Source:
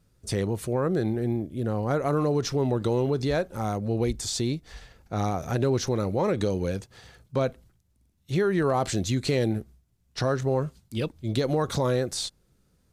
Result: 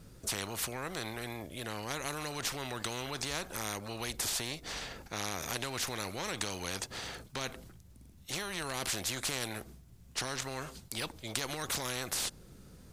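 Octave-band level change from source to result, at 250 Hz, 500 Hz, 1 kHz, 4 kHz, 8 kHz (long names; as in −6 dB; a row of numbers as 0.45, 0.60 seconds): −16.0, −16.5, −8.0, 0.0, +1.5 decibels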